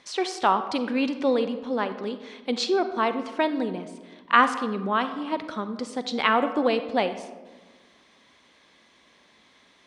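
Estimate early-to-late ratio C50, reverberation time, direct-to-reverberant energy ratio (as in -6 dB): 11.0 dB, 1.3 s, 10.0 dB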